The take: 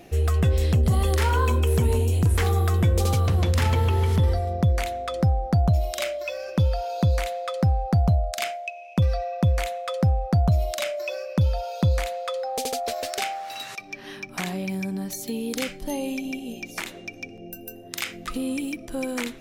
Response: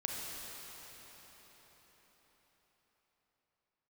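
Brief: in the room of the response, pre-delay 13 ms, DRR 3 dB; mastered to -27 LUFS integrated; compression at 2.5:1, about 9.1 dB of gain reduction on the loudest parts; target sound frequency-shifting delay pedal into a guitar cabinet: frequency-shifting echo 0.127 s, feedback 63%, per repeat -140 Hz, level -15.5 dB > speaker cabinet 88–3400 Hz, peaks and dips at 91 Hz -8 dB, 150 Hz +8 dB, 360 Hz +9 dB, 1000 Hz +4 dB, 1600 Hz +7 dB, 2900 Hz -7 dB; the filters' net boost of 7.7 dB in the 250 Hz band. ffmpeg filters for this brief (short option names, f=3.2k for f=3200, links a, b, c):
-filter_complex "[0:a]equalizer=f=250:t=o:g=7,acompressor=threshold=-28dB:ratio=2.5,asplit=2[a][b];[1:a]atrim=start_sample=2205,adelay=13[c];[b][c]afir=irnorm=-1:irlink=0,volume=-6dB[d];[a][d]amix=inputs=2:normalize=0,asplit=8[e][f][g][h][i][j][k][l];[f]adelay=127,afreqshift=-140,volume=-15.5dB[m];[g]adelay=254,afreqshift=-280,volume=-19.5dB[n];[h]adelay=381,afreqshift=-420,volume=-23.5dB[o];[i]adelay=508,afreqshift=-560,volume=-27.5dB[p];[j]adelay=635,afreqshift=-700,volume=-31.6dB[q];[k]adelay=762,afreqshift=-840,volume=-35.6dB[r];[l]adelay=889,afreqshift=-980,volume=-39.6dB[s];[e][m][n][o][p][q][r][s]amix=inputs=8:normalize=0,highpass=88,equalizer=f=91:t=q:w=4:g=-8,equalizer=f=150:t=q:w=4:g=8,equalizer=f=360:t=q:w=4:g=9,equalizer=f=1k:t=q:w=4:g=4,equalizer=f=1.6k:t=q:w=4:g=7,equalizer=f=2.9k:t=q:w=4:g=-7,lowpass=f=3.4k:w=0.5412,lowpass=f=3.4k:w=1.3066"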